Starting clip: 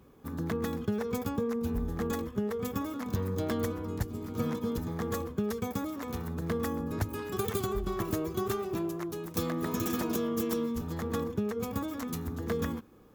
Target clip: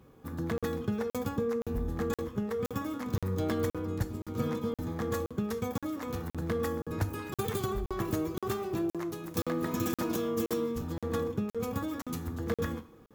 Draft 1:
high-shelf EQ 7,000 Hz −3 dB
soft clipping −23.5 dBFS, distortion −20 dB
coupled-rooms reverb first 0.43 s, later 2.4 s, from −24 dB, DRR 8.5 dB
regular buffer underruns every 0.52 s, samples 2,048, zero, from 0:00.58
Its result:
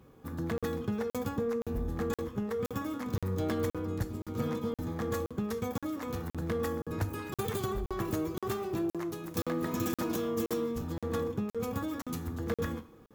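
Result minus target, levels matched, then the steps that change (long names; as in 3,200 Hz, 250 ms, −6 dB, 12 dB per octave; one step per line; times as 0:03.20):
soft clipping: distortion +13 dB
change: soft clipping −16 dBFS, distortion −33 dB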